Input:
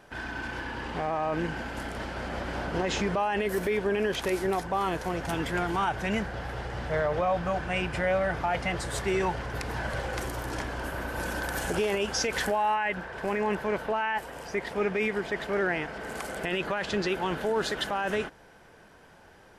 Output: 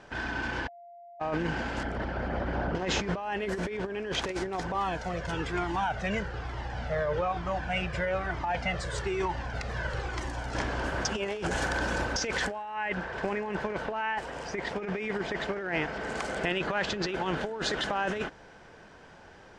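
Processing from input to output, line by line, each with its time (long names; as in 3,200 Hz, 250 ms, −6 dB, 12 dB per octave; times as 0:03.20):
0:00.68–0:01.20: beep over 693 Hz −16 dBFS
0:01.83–0:02.75: spectral envelope exaggerated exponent 1.5
0:04.74–0:10.55: flanger whose copies keep moving one way falling 1.1 Hz
0:11.05–0:12.16: reverse
whole clip: low-pass filter 7,400 Hz 24 dB per octave; compressor whose output falls as the input rises −30 dBFS, ratio −0.5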